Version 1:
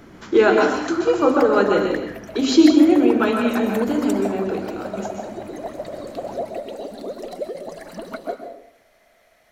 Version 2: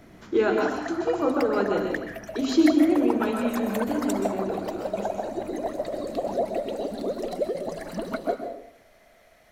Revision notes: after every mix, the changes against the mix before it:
speech −9.5 dB
master: add low-shelf EQ 310 Hz +6 dB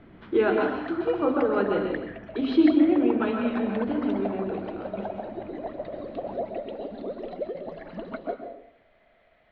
background −5.0 dB
master: add Butterworth low-pass 3,600 Hz 36 dB per octave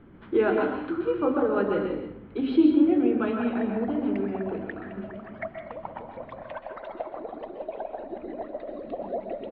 background: entry +2.75 s
master: add high-frequency loss of the air 210 metres

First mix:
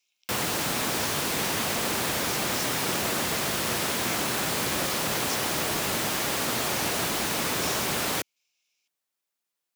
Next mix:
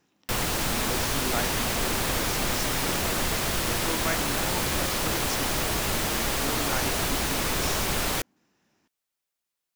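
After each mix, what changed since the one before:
speech: remove linear-phase brick-wall high-pass 2,100 Hz
master: remove high-pass filter 130 Hz 12 dB per octave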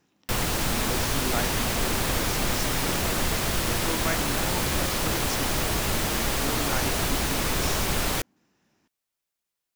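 master: add low-shelf EQ 220 Hz +3.5 dB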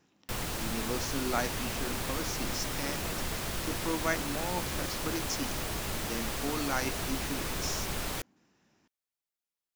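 background −9.0 dB

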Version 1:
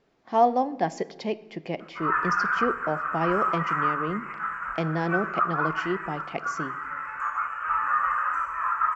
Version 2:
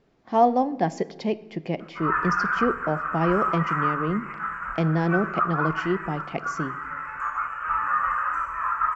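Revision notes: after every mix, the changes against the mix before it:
master: add low-shelf EQ 280 Hz +8.5 dB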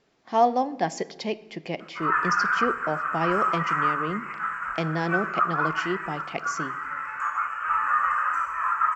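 master: add spectral tilt +2.5 dB per octave

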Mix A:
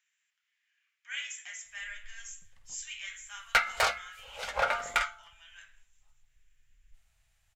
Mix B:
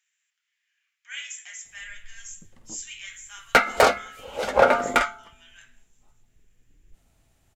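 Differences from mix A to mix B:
background: remove guitar amp tone stack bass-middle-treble 10-0-10
master: add high-shelf EQ 5,300 Hz +7.5 dB

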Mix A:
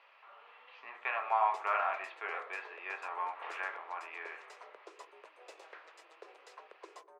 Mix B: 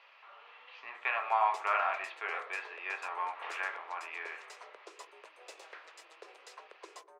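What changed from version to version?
master: add high-shelf EQ 2,600 Hz +8.5 dB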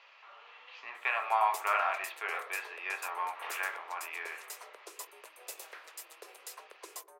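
master: remove high-frequency loss of the air 120 metres

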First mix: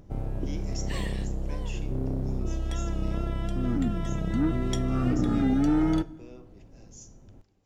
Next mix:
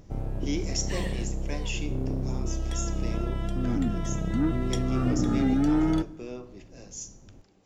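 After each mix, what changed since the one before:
speech +10.0 dB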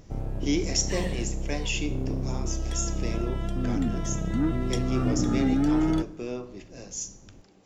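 speech +5.0 dB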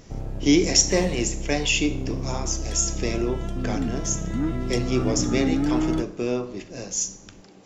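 speech +8.5 dB

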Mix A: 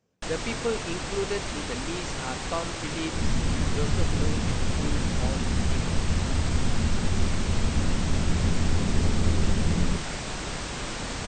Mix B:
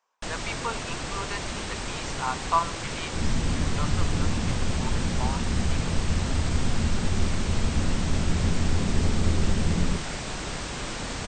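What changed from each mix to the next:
speech: add high-pass with resonance 990 Hz, resonance Q 5.2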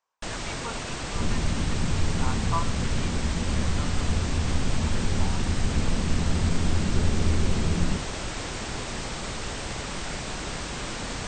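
speech −6.5 dB
second sound: entry −2.00 s

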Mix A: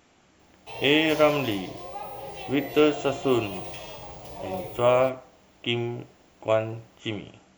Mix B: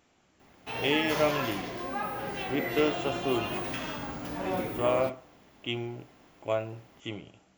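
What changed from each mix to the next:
speech −6.5 dB
background: remove phaser with its sweep stopped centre 610 Hz, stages 4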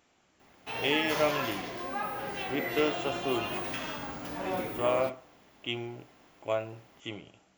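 master: add low-shelf EQ 340 Hz −5 dB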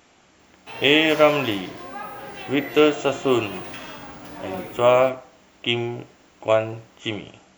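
speech +12.0 dB

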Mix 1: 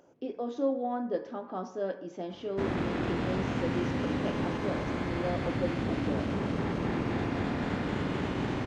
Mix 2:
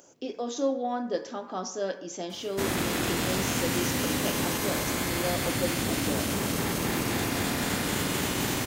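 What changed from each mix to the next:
master: remove head-to-tape spacing loss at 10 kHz 36 dB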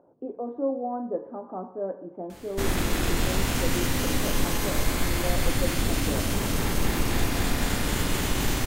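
speech: add low-pass filter 1,000 Hz 24 dB per octave
first sound: remove high-pass filter 120 Hz 12 dB per octave
second sound: unmuted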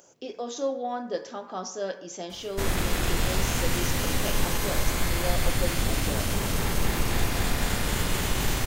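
speech: remove low-pass filter 1,000 Hz 24 dB per octave
master: add parametric band 280 Hz −6 dB 0.57 octaves

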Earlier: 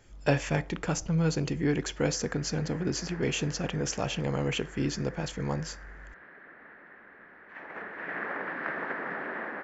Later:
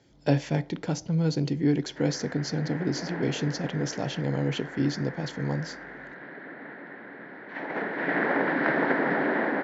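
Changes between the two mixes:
background +12.0 dB
master: add loudspeaker in its box 130–5,900 Hz, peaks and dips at 140 Hz +6 dB, 280 Hz +6 dB, 1,200 Hz −10 dB, 1,700 Hz −4 dB, 2,600 Hz −7 dB, 4,100 Hz +4 dB

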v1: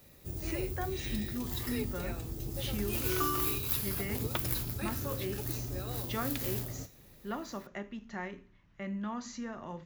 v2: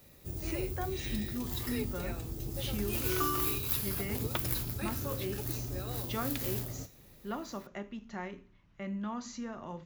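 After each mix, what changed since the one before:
speech: add parametric band 1,800 Hz −4.5 dB 0.33 octaves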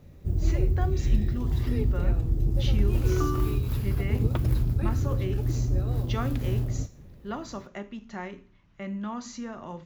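speech +3.5 dB
background: add spectral tilt −4 dB per octave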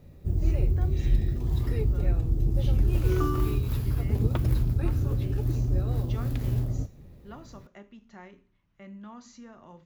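speech −10.5 dB

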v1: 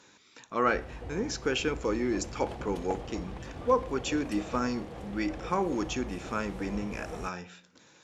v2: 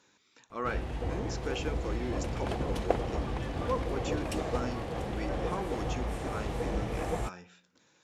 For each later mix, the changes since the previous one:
speech −8.0 dB
background +7.5 dB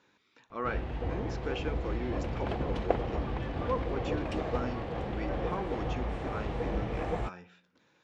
master: add low-pass filter 3,500 Hz 12 dB per octave

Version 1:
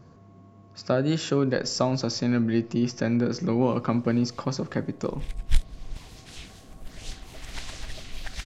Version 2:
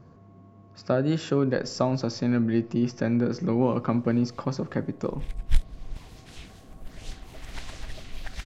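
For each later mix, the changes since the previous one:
background: add high-shelf EQ 12,000 Hz +10.5 dB
master: add high-shelf EQ 3,300 Hz −9 dB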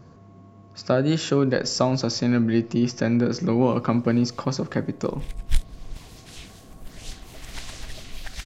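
speech +3.0 dB
master: add high-shelf EQ 3,300 Hz +9 dB

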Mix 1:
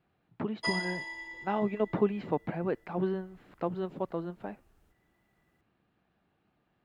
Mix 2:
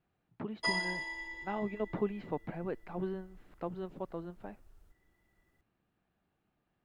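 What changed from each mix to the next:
speech −6.5 dB
master: remove high-pass filter 67 Hz 6 dB per octave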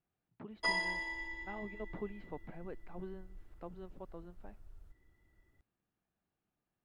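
speech −9.0 dB
background: add bass and treble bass +6 dB, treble −4 dB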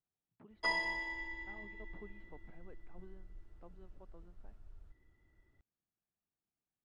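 speech −10.5 dB
master: add high-frequency loss of the air 60 metres

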